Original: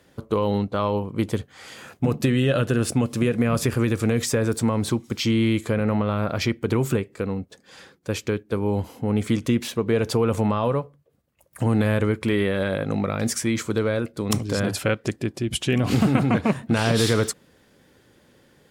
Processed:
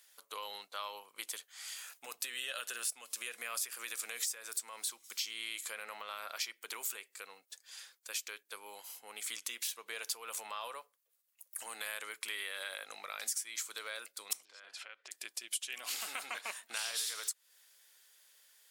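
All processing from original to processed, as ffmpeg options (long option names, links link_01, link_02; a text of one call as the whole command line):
ffmpeg -i in.wav -filter_complex "[0:a]asettb=1/sr,asplit=3[link_01][link_02][link_03];[link_01]atrim=end=14.454[link_04];[link_02]atrim=start=14.45:end=15.11,asetpts=PTS-STARTPTS,afade=type=in:duration=0.004:curve=qsin,afade=type=out:start_time=0.656:duration=0.004:curve=qsin,acompressor=threshold=-29dB:ratio=16:attack=3.2:release=140:knee=1:detection=peak,highpass=190,lowpass=3000[link_05];[link_03]atrim=start=15.106[link_06];[link_04][link_05]acrossfade=duration=0.004:curve1=hsin:curve2=qsin[link_07];[link_07][link_06]acrossfade=duration=0.004:curve1=qsin:curve2=hsin,highpass=700,aderivative,acompressor=threshold=-38dB:ratio=5,volume=3dB" out.wav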